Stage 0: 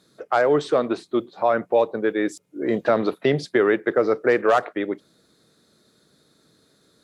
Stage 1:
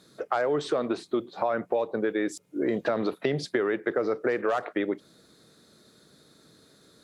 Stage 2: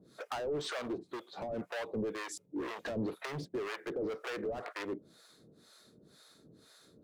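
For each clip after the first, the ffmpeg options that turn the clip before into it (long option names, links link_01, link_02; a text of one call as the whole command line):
ffmpeg -i in.wav -filter_complex "[0:a]asplit=2[link_01][link_02];[link_02]alimiter=limit=-15.5dB:level=0:latency=1:release=24,volume=1.5dB[link_03];[link_01][link_03]amix=inputs=2:normalize=0,acompressor=threshold=-20dB:ratio=4,volume=-4dB" out.wav
ffmpeg -i in.wav -filter_complex "[0:a]volume=30.5dB,asoftclip=hard,volume=-30.5dB,acrossover=split=610[link_01][link_02];[link_01]aeval=exprs='val(0)*(1-1/2+1/2*cos(2*PI*2*n/s))':channel_layout=same[link_03];[link_02]aeval=exprs='val(0)*(1-1/2-1/2*cos(2*PI*2*n/s))':channel_layout=same[link_04];[link_03][link_04]amix=inputs=2:normalize=0,volume=1dB" out.wav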